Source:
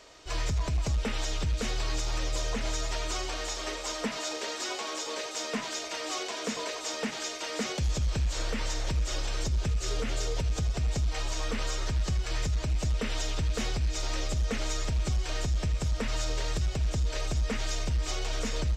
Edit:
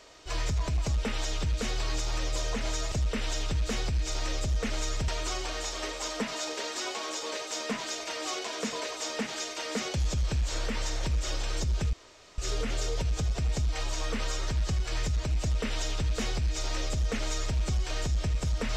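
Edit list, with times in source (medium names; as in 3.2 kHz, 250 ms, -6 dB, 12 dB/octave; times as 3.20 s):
9.77 s: insert room tone 0.45 s
12.80–14.96 s: copy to 2.92 s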